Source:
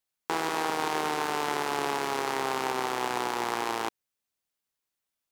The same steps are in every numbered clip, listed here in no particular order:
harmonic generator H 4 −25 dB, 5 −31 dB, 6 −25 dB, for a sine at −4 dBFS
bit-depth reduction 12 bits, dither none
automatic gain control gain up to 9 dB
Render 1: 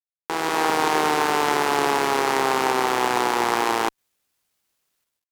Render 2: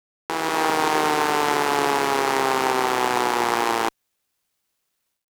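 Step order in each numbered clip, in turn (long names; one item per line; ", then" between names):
automatic gain control, then bit-depth reduction, then harmonic generator
automatic gain control, then harmonic generator, then bit-depth reduction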